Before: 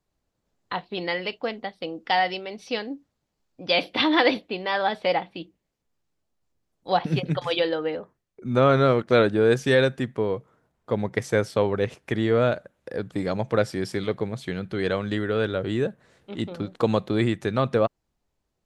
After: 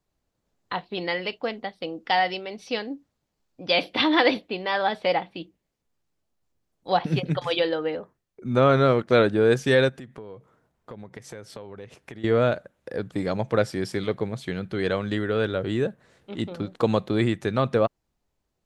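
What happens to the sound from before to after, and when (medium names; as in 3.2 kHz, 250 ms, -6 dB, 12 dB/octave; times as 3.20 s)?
9.89–12.24 s: compression 5:1, threshold -38 dBFS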